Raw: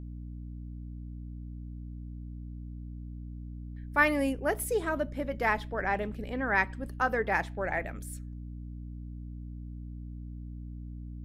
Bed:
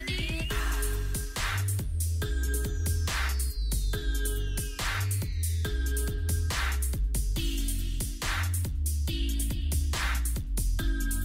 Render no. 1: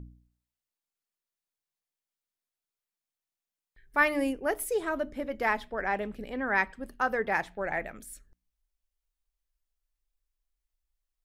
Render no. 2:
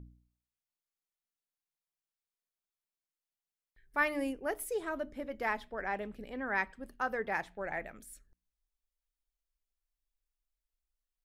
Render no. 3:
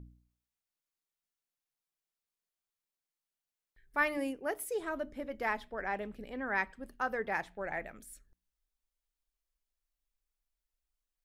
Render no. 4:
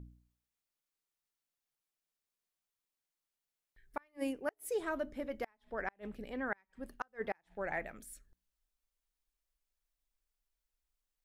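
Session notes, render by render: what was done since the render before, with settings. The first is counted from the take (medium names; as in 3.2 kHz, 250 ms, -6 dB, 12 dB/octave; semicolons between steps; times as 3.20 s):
de-hum 60 Hz, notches 5
trim -6 dB
4.17–4.79 s: high-pass 130 Hz 6 dB/octave
inverted gate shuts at -25 dBFS, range -38 dB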